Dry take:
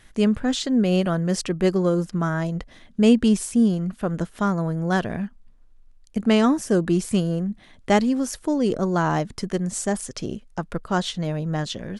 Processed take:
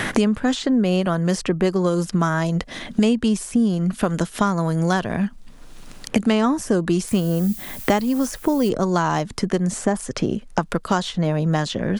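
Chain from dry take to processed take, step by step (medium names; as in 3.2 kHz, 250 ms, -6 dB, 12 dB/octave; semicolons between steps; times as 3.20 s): dynamic bell 1 kHz, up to +5 dB, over -39 dBFS, Q 2; in parallel at +1.5 dB: compression, threshold -31 dBFS, peak gain reduction 19 dB; 7.07–8.68 s: on the sum: added noise violet -41 dBFS; three bands compressed up and down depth 100%; trim -1.5 dB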